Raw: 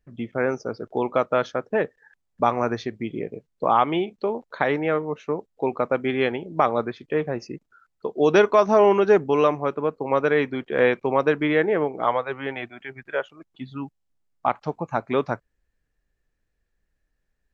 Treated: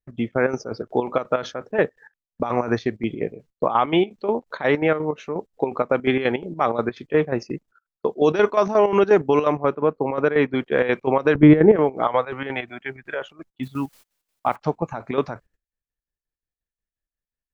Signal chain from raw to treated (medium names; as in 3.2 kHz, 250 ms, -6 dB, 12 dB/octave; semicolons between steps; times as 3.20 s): 9.52–10.55 s: treble shelf 3.4 kHz -9.5 dB; 13.63–14.56 s: word length cut 10-bit, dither triangular; gate -51 dBFS, range -22 dB; peak limiter -13 dBFS, peak gain reduction 8.5 dB; 11.35–11.76 s: tilt EQ -4.5 dB/octave; square tremolo 5.6 Hz, depth 65%, duty 60%; trim +6 dB